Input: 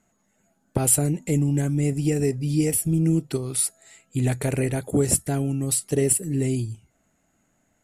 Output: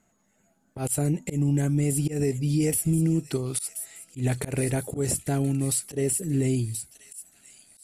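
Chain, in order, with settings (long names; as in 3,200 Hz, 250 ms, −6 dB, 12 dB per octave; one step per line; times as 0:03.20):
delay with a high-pass on its return 1,028 ms, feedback 40%, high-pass 3,200 Hz, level −10.5 dB
volume swells 135 ms
brickwall limiter −15.5 dBFS, peak gain reduction 9 dB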